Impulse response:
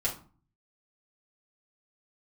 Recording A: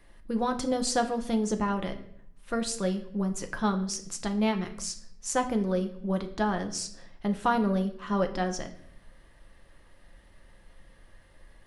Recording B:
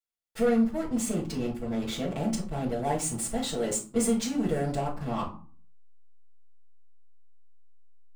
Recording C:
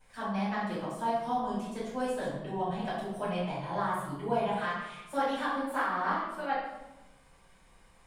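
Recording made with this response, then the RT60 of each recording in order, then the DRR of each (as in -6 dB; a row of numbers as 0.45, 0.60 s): B; 0.70, 0.40, 1.0 s; 5.5, -7.0, -11.5 dB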